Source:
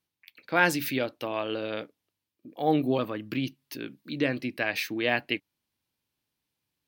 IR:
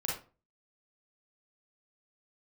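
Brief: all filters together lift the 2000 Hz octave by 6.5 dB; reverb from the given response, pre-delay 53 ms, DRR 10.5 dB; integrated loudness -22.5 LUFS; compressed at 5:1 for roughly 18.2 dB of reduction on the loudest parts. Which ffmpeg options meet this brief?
-filter_complex "[0:a]equalizer=f=2k:t=o:g=8.5,acompressor=threshold=-34dB:ratio=5,asplit=2[a][b];[1:a]atrim=start_sample=2205,adelay=53[c];[b][c]afir=irnorm=-1:irlink=0,volume=-14.5dB[d];[a][d]amix=inputs=2:normalize=0,volume=15dB"

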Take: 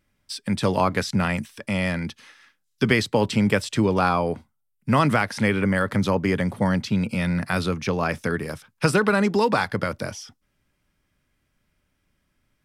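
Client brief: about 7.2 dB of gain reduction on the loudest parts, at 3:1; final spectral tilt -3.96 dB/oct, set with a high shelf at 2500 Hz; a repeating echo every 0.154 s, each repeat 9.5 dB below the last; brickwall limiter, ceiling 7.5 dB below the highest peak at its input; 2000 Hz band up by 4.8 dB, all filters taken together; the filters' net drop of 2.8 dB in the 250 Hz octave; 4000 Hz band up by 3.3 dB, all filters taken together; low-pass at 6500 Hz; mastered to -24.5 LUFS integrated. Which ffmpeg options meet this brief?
-af "lowpass=6.5k,equalizer=f=250:t=o:g=-4,equalizer=f=2k:t=o:g=7.5,highshelf=f=2.5k:g=-7.5,equalizer=f=4k:t=o:g=9,acompressor=threshold=-22dB:ratio=3,alimiter=limit=-15dB:level=0:latency=1,aecho=1:1:154|308|462|616:0.335|0.111|0.0365|0.012,volume=3dB"

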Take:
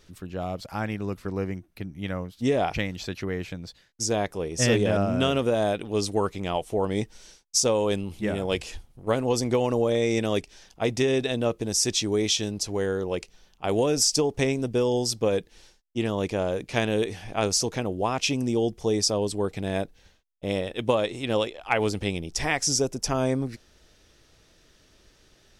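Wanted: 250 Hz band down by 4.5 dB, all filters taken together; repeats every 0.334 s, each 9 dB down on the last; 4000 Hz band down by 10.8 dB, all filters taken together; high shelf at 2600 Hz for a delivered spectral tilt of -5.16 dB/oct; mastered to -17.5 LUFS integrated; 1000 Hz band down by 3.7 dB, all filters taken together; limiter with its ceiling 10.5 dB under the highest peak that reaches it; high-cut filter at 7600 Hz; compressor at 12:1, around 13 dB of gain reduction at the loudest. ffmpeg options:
-af "lowpass=7.6k,equalizer=f=250:t=o:g=-5.5,equalizer=f=1k:t=o:g=-3.5,highshelf=f=2.6k:g=-7.5,equalizer=f=4k:t=o:g=-7,acompressor=threshold=-34dB:ratio=12,alimiter=level_in=7.5dB:limit=-24dB:level=0:latency=1,volume=-7.5dB,aecho=1:1:334|668|1002|1336:0.355|0.124|0.0435|0.0152,volume=23.5dB"

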